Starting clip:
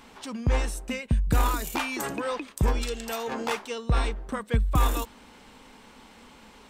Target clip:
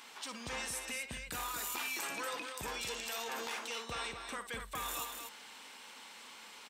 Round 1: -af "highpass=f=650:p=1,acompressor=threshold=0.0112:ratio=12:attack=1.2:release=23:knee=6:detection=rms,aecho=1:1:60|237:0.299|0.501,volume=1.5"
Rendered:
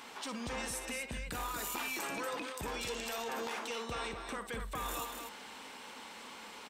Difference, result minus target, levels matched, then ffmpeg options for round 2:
500 Hz band +4.5 dB
-af "highpass=f=2100:p=1,acompressor=threshold=0.0112:ratio=12:attack=1.2:release=23:knee=6:detection=rms,aecho=1:1:60|237:0.299|0.501,volume=1.5"

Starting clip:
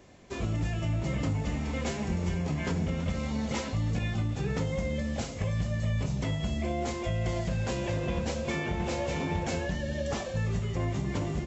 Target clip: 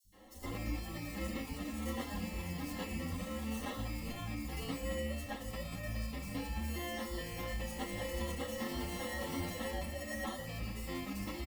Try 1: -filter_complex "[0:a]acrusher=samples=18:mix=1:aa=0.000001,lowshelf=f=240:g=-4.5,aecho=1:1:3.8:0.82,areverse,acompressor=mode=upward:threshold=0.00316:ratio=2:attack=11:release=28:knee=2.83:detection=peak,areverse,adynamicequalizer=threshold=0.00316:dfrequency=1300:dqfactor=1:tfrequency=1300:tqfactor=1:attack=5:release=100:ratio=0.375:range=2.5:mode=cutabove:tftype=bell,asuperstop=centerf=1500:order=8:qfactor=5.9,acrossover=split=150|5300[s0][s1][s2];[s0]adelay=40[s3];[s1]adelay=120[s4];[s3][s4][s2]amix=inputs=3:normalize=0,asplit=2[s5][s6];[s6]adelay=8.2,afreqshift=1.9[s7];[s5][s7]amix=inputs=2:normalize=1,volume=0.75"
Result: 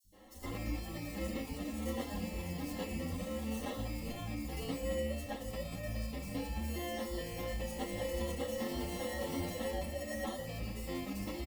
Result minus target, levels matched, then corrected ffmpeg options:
500 Hz band +3.0 dB
-filter_complex "[0:a]acrusher=samples=18:mix=1:aa=0.000001,lowshelf=f=240:g=-4.5,aecho=1:1:3.8:0.82,areverse,acompressor=mode=upward:threshold=0.00316:ratio=2:attack=11:release=28:knee=2.83:detection=peak,areverse,adynamicequalizer=threshold=0.00316:dfrequency=550:dqfactor=1:tfrequency=550:tqfactor=1:attack=5:release=100:ratio=0.375:range=2.5:mode=cutabove:tftype=bell,asuperstop=centerf=1500:order=8:qfactor=5.9,acrossover=split=150|5300[s0][s1][s2];[s0]adelay=40[s3];[s1]adelay=120[s4];[s3][s4][s2]amix=inputs=3:normalize=0,asplit=2[s5][s6];[s6]adelay=8.2,afreqshift=1.9[s7];[s5][s7]amix=inputs=2:normalize=1,volume=0.75"

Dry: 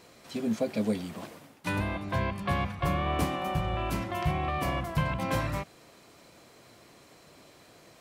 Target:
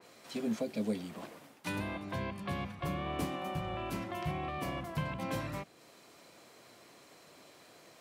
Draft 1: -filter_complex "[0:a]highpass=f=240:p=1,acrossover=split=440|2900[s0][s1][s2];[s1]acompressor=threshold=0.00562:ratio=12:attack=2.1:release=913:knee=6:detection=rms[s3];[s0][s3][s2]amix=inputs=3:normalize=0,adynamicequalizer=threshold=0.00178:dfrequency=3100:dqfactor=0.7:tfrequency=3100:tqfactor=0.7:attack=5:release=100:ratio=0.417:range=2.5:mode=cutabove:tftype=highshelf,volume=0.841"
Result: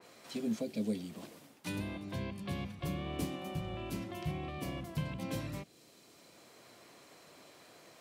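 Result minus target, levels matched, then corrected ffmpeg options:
compression: peak gain reduction +10 dB
-filter_complex "[0:a]highpass=f=240:p=1,acrossover=split=440|2900[s0][s1][s2];[s1]acompressor=threshold=0.02:ratio=12:attack=2.1:release=913:knee=6:detection=rms[s3];[s0][s3][s2]amix=inputs=3:normalize=0,adynamicequalizer=threshold=0.00178:dfrequency=3100:dqfactor=0.7:tfrequency=3100:tqfactor=0.7:attack=5:release=100:ratio=0.417:range=2.5:mode=cutabove:tftype=highshelf,volume=0.841"

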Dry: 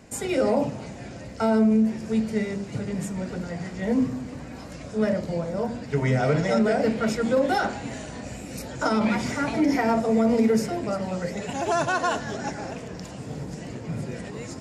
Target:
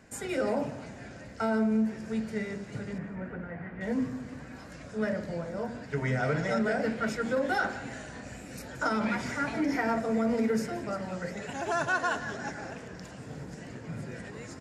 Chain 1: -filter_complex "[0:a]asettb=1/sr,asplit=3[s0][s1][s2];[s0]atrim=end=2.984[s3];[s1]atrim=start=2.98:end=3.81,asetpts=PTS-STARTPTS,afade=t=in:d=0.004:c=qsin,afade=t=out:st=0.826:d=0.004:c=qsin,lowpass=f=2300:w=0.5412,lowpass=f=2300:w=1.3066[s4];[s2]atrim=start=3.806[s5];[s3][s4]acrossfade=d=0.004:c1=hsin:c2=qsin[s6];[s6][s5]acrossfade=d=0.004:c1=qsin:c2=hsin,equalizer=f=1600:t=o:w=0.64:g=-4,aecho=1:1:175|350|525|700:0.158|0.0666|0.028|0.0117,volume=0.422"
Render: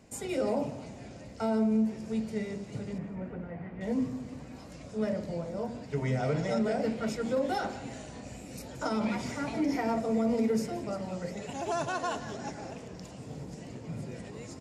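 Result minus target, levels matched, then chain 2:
2 kHz band -8.0 dB
-filter_complex "[0:a]asettb=1/sr,asplit=3[s0][s1][s2];[s0]atrim=end=2.984[s3];[s1]atrim=start=2.98:end=3.81,asetpts=PTS-STARTPTS,afade=t=in:d=0.004:c=qsin,afade=t=out:st=0.826:d=0.004:c=qsin,lowpass=f=2300:w=0.5412,lowpass=f=2300:w=1.3066[s4];[s2]atrim=start=3.806[s5];[s3][s4]acrossfade=d=0.004:c1=hsin:c2=qsin[s6];[s6][s5]acrossfade=d=0.004:c1=qsin:c2=hsin,equalizer=f=1600:t=o:w=0.64:g=8,aecho=1:1:175|350|525|700:0.158|0.0666|0.028|0.0117,volume=0.422"

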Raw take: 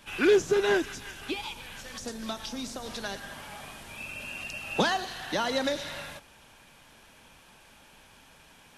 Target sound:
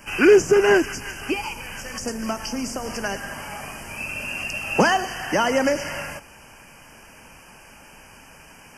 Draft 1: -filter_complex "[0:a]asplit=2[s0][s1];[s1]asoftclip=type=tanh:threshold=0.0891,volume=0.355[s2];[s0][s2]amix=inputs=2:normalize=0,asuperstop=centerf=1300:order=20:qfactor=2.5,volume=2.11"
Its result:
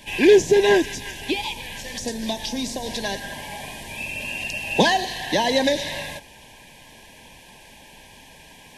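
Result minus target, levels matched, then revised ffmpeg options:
4 kHz band +5.5 dB
-filter_complex "[0:a]asplit=2[s0][s1];[s1]asoftclip=type=tanh:threshold=0.0891,volume=0.355[s2];[s0][s2]amix=inputs=2:normalize=0,asuperstop=centerf=3800:order=20:qfactor=2.5,volume=2.11"

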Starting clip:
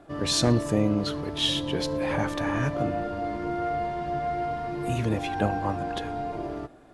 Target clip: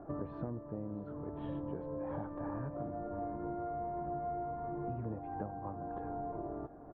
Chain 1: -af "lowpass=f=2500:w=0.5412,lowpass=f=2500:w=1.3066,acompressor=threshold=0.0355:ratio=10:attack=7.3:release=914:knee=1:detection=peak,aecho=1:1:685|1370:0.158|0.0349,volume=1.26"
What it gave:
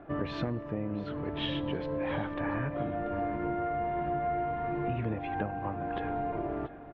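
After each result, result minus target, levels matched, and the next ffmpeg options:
2 kHz band +10.5 dB; compression: peak gain reduction -7.5 dB
-af "lowpass=f=1200:w=0.5412,lowpass=f=1200:w=1.3066,acompressor=threshold=0.0355:ratio=10:attack=7.3:release=914:knee=1:detection=peak,aecho=1:1:685|1370:0.158|0.0349,volume=1.26"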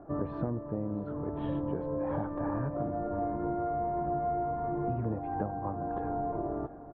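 compression: peak gain reduction -7 dB
-af "lowpass=f=1200:w=0.5412,lowpass=f=1200:w=1.3066,acompressor=threshold=0.0141:ratio=10:attack=7.3:release=914:knee=1:detection=peak,aecho=1:1:685|1370:0.158|0.0349,volume=1.26"

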